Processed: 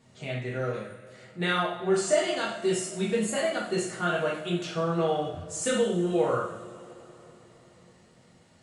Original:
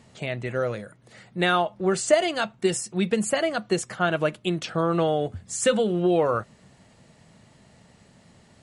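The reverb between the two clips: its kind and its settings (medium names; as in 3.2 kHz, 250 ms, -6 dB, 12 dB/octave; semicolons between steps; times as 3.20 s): two-slope reverb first 0.59 s, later 4.2 s, from -22 dB, DRR -6 dB; trim -10.5 dB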